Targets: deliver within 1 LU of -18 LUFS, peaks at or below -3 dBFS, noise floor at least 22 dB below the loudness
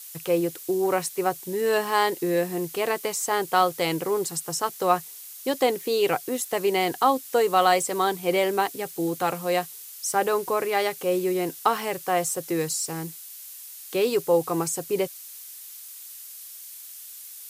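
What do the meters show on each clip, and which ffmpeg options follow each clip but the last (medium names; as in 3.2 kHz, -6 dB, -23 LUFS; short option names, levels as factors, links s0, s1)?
noise floor -42 dBFS; noise floor target -47 dBFS; loudness -25.0 LUFS; peak level -7.0 dBFS; loudness target -18.0 LUFS
-> -af "afftdn=nr=6:nf=-42"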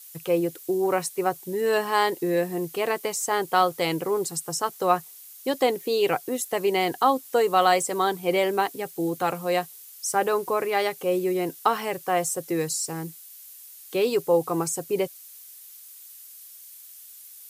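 noise floor -46 dBFS; noise floor target -47 dBFS
-> -af "afftdn=nr=6:nf=-46"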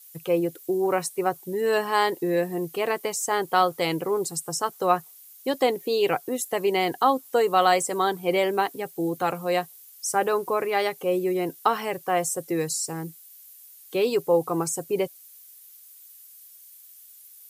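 noise floor -50 dBFS; loudness -25.0 LUFS; peak level -7.5 dBFS; loudness target -18.0 LUFS
-> -af "volume=2.24,alimiter=limit=0.708:level=0:latency=1"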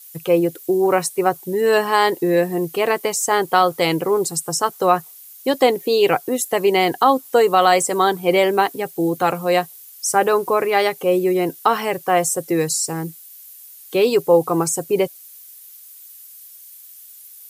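loudness -18.5 LUFS; peak level -3.0 dBFS; noise floor -43 dBFS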